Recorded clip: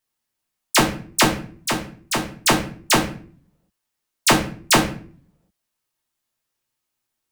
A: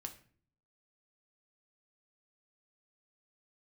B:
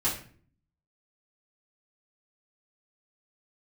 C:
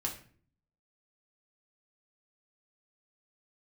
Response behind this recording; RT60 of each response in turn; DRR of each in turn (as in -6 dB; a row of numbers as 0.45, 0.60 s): C; 0.50, 0.45, 0.45 s; 4.5, -10.0, -1.0 dB